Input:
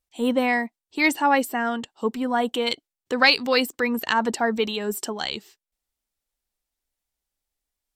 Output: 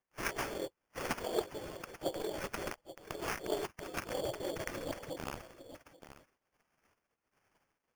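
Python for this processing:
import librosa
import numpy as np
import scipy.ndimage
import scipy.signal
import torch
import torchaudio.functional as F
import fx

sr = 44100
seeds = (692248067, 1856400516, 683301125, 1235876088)

p1 = fx.high_shelf(x, sr, hz=9800.0, db=-6.5)
p2 = fx.spec_gate(p1, sr, threshold_db=-30, keep='weak')
p3 = fx.curve_eq(p2, sr, hz=(160.0, 500.0, 1300.0, 4700.0, 9000.0), db=(0, 14, -18, -13, 9))
p4 = fx.rider(p3, sr, range_db=3, speed_s=0.5)
p5 = p4 + fx.echo_single(p4, sr, ms=833, db=-15.0, dry=0)
p6 = fx.harmonic_tremolo(p5, sr, hz=1.4, depth_pct=70, crossover_hz=1900.0)
p7 = fx.sample_hold(p6, sr, seeds[0], rate_hz=3900.0, jitter_pct=0)
p8 = fx.transformer_sat(p7, sr, knee_hz=470.0)
y = F.gain(torch.from_numpy(p8), 13.0).numpy()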